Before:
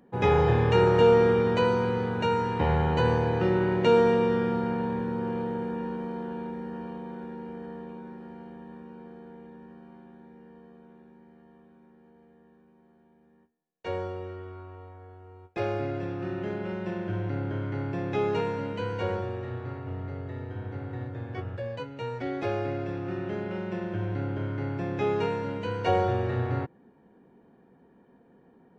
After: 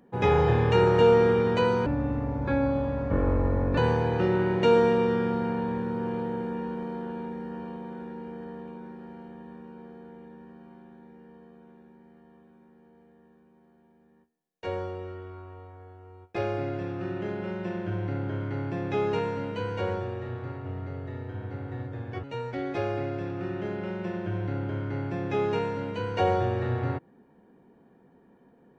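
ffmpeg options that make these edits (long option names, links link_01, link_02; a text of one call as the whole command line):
ffmpeg -i in.wav -filter_complex "[0:a]asplit=4[link_01][link_02][link_03][link_04];[link_01]atrim=end=1.864[link_05];[link_02]atrim=start=1.86:end=2.99,asetpts=PTS-STARTPTS,asetrate=26019,aresample=44100[link_06];[link_03]atrim=start=2.986:end=21.452[link_07];[link_04]atrim=start=21.908[link_08];[link_05][link_06]acrossfade=duration=0.004:curve1=hsin:curve2=hsin[link_09];[link_09][link_07]acrossfade=duration=0.004:curve1=hsin:curve2=hsin[link_10];[link_10][link_08]acrossfade=duration=0.004:curve1=hsin:curve2=hsin" out.wav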